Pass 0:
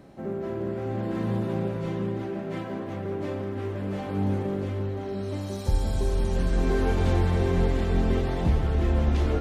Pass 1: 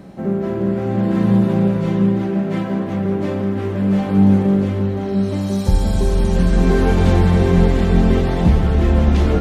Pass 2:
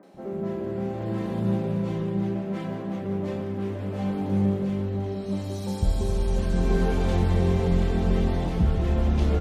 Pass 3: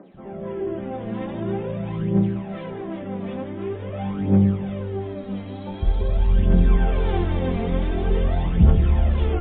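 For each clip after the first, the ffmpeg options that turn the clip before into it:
-af "equalizer=f=190:t=o:w=0.23:g=11.5,volume=2.66"
-filter_complex "[0:a]areverse,acompressor=mode=upward:threshold=0.0398:ratio=2.5,areverse,acrossover=split=250|1600[s0][s1][s2];[s2]adelay=30[s3];[s0]adelay=140[s4];[s4][s1][s3]amix=inputs=3:normalize=0,volume=0.398"
-af "aphaser=in_gain=1:out_gain=1:delay=4.4:decay=0.64:speed=0.46:type=triangular" -ar 8000 -c:a libmp3lame -b:a 16k

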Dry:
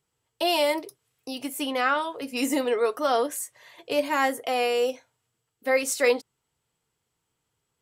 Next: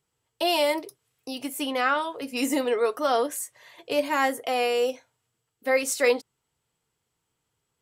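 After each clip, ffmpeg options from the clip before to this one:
-af anull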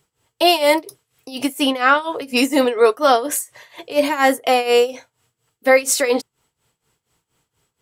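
-filter_complex "[0:a]tremolo=f=4.2:d=0.85,asplit=2[s0][s1];[s1]alimiter=limit=0.0841:level=0:latency=1:release=24,volume=0.794[s2];[s0][s2]amix=inputs=2:normalize=0,volume=2.66"

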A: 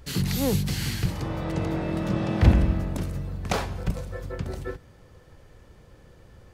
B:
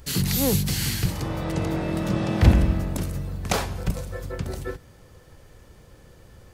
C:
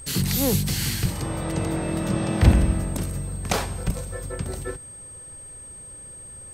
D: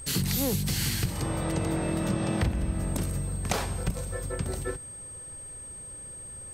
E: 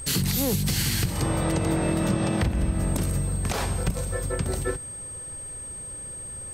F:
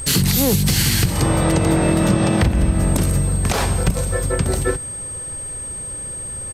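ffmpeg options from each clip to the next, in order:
-af "highshelf=f=5900:g=9,volume=1.19"
-af "aeval=exprs='val(0)+0.0112*sin(2*PI*8400*n/s)':c=same"
-af "acompressor=threshold=0.0794:ratio=10,volume=0.891"
-af "alimiter=limit=0.112:level=0:latency=1:release=124,volume=1.78"
-af "aresample=32000,aresample=44100,volume=2.51"

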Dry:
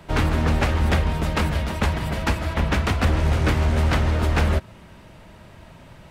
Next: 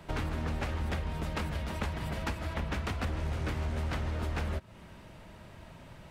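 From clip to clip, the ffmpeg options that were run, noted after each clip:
-af "acompressor=threshold=0.0398:ratio=3,volume=0.562"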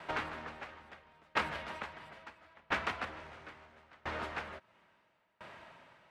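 -af "bandpass=f=1500:t=q:w=0.72:csg=0,aeval=exprs='val(0)*pow(10,-30*if(lt(mod(0.74*n/s,1),2*abs(0.74)/1000),1-mod(0.74*n/s,1)/(2*abs(0.74)/1000),(mod(0.74*n/s,1)-2*abs(0.74)/1000)/(1-2*abs(0.74)/1000))/20)':c=same,volume=2.66"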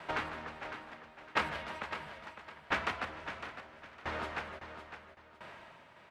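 -af "aecho=1:1:557|1114|1671:0.316|0.0917|0.0266,volume=1.12"

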